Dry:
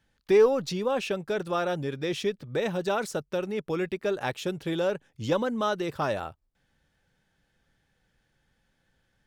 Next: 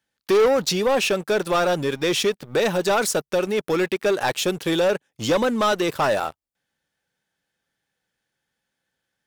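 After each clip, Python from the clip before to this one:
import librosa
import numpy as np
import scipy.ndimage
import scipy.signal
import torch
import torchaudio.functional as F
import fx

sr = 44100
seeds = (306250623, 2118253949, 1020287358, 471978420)

y = fx.highpass(x, sr, hz=310.0, slope=6)
y = fx.high_shelf(y, sr, hz=5700.0, db=7.5)
y = fx.leveller(y, sr, passes=3)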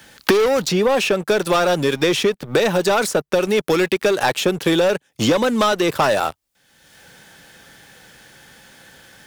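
y = fx.band_squash(x, sr, depth_pct=100)
y = y * librosa.db_to_amplitude(3.0)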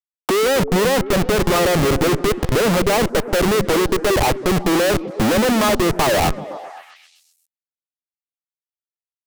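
y = scipy.signal.sosfilt(scipy.signal.cheby1(5, 1.0, [120.0, 1200.0], 'bandpass', fs=sr, output='sos'), x)
y = fx.schmitt(y, sr, flips_db=-28.0)
y = fx.echo_stepped(y, sr, ms=129, hz=220.0, octaves=0.7, feedback_pct=70, wet_db=-8.0)
y = y * librosa.db_to_amplitude(5.0)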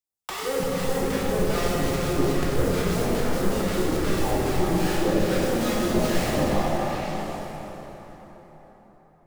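y = fx.over_compress(x, sr, threshold_db=-24.0, ratio=-1.0)
y = fx.phaser_stages(y, sr, stages=2, low_hz=270.0, high_hz=3500.0, hz=2.4, feedback_pct=25)
y = fx.rev_plate(y, sr, seeds[0], rt60_s=4.6, hf_ratio=0.6, predelay_ms=0, drr_db=-7.0)
y = y * librosa.db_to_amplitude(-5.0)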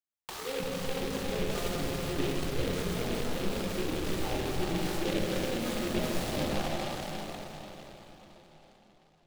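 y = fx.noise_mod_delay(x, sr, seeds[1], noise_hz=2500.0, depth_ms=0.11)
y = y * librosa.db_to_amplitude(-8.5)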